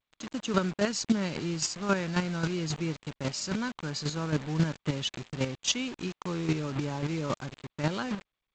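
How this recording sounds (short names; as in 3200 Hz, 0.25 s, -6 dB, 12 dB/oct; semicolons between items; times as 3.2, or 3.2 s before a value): a quantiser's noise floor 6-bit, dither none; chopped level 3.7 Hz, depth 60%, duty 15%; G.722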